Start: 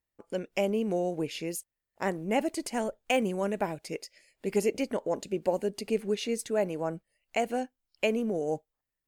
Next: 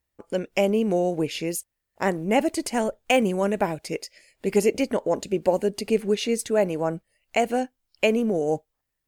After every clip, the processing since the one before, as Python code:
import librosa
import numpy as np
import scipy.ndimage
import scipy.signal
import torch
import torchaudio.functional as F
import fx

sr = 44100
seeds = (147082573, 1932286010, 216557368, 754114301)

y = fx.peak_eq(x, sr, hz=69.0, db=6.0, octaves=0.77)
y = F.gain(torch.from_numpy(y), 6.5).numpy()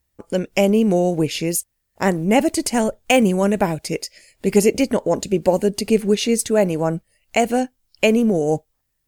y = fx.bass_treble(x, sr, bass_db=6, treble_db=5)
y = F.gain(torch.from_numpy(y), 4.0).numpy()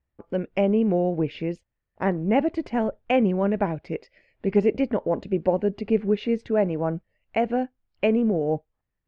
y = scipy.signal.sosfilt(scipy.signal.bessel(4, 1900.0, 'lowpass', norm='mag', fs=sr, output='sos'), x)
y = F.gain(torch.from_numpy(y), -5.0).numpy()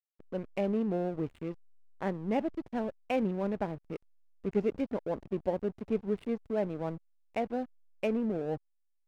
y = fx.backlash(x, sr, play_db=-29.0)
y = F.gain(torch.from_numpy(y), -9.0).numpy()